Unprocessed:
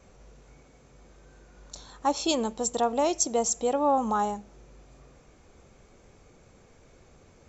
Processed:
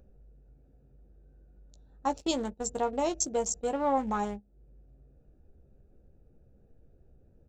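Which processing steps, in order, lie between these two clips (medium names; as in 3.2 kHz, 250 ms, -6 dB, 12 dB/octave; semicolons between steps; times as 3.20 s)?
local Wiener filter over 41 samples; doubling 15 ms -9 dB; upward compressor, threshold -32 dBFS; gate -34 dBFS, range -16 dB; bass shelf 76 Hz +11 dB; trim -4 dB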